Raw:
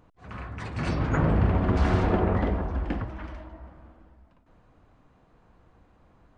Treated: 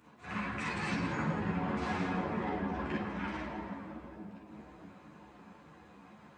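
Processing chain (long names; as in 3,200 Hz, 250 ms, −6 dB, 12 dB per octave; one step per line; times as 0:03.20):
Bessel high-pass filter 170 Hz, order 2
downward compressor 4 to 1, threshold −40 dBFS, peak gain reduction 16.5 dB
echo with a time of its own for lows and highs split 800 Hz, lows 628 ms, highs 167 ms, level −10.5 dB
convolution reverb RT60 0.40 s, pre-delay 37 ms, DRR −3.5 dB
string-ensemble chorus
level +7.5 dB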